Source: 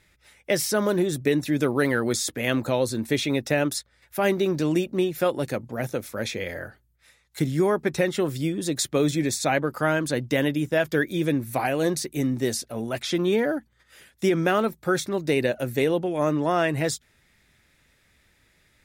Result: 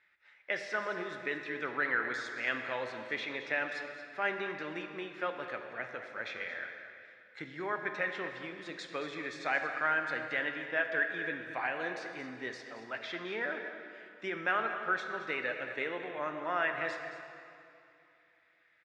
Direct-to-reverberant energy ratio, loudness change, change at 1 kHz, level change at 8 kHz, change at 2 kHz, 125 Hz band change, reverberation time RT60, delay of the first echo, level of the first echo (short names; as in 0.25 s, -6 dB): 4.5 dB, -10.5 dB, -6.5 dB, under -25 dB, -2.0 dB, -25.5 dB, 2.8 s, 0.223 s, -12.5 dB